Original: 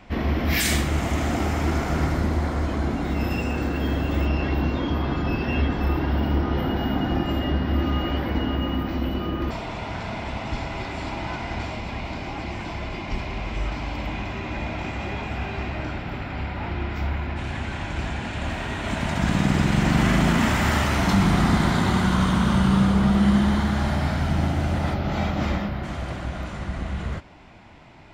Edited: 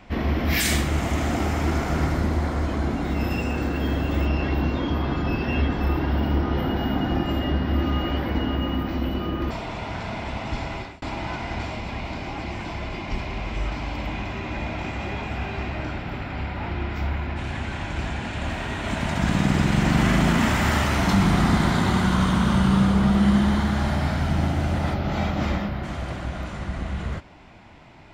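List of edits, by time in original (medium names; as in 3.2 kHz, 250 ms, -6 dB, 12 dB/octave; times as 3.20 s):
10.74–11.02 s: fade out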